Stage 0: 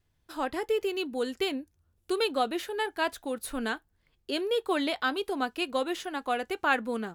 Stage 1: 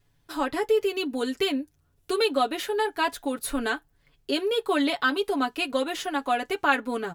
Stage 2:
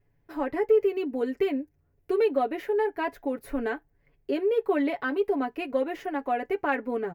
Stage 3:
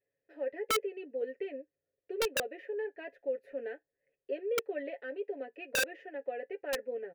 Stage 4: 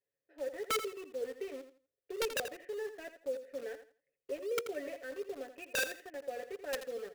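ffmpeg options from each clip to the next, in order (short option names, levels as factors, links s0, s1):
-filter_complex "[0:a]aecho=1:1:7.1:0.73,asplit=2[s0][s1];[s1]acompressor=threshold=0.0224:ratio=6,volume=0.794[s2];[s0][s2]amix=inputs=2:normalize=0"
-af "firequalizer=gain_entry='entry(280,0);entry(410,4);entry(1300,-8);entry(2000,0);entry(3500,-19);entry(5300,-15);entry(8600,-22);entry(15000,-6)':delay=0.05:min_phase=1,asoftclip=type=tanh:threshold=0.473,volume=0.841"
-filter_complex "[0:a]asplit=3[s0][s1][s2];[s0]bandpass=f=530:t=q:w=8,volume=1[s3];[s1]bandpass=f=1840:t=q:w=8,volume=0.501[s4];[s2]bandpass=f=2480:t=q:w=8,volume=0.355[s5];[s3][s4][s5]amix=inputs=3:normalize=0,aeval=exprs='(mod(16.8*val(0)+1,2)-1)/16.8':c=same"
-filter_complex "[0:a]asplit=2[s0][s1];[s1]acrusher=bits=6:mix=0:aa=0.000001,volume=0.562[s2];[s0][s2]amix=inputs=2:normalize=0,aecho=1:1:83|166|249:0.282|0.0676|0.0162,volume=0.447"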